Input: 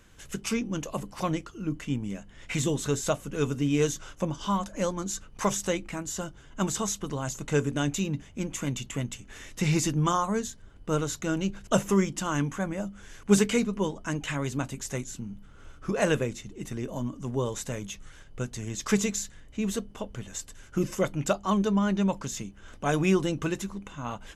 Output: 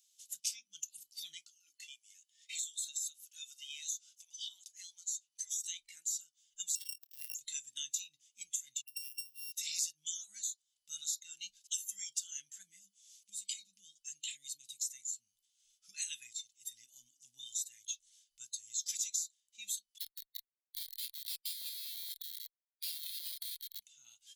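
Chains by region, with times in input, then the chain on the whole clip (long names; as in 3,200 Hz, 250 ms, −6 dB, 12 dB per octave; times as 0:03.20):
0:01.47–0:05.61: high-pass filter 700 Hz + downward compressor 4 to 1, threshold −34 dBFS
0:06.75–0:07.35: samples sorted by size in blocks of 16 samples + noise gate −40 dBFS, range −20 dB + saturating transformer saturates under 1,400 Hz
0:08.81–0:09.52: samples sorted by size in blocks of 16 samples + downward compressor 1.5 to 1, threshold −43 dBFS + all-pass dispersion highs, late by 67 ms, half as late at 860 Hz
0:12.62–0:14.90: Butterworth band-reject 1,100 Hz, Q 0.79 + parametric band 180 Hz +10 dB 0.25 octaves + downward compressor 16 to 1, threshold −27 dBFS
0:19.98–0:23.80: variable-slope delta modulation 32 kbit/s + comparator with hysteresis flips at −34.5 dBFS
whole clip: noise reduction from a noise print of the clip's start 15 dB; inverse Chebyshev high-pass filter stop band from 1,200 Hz, stop band 60 dB; downward compressor 2.5 to 1, threshold −51 dBFS; level +11 dB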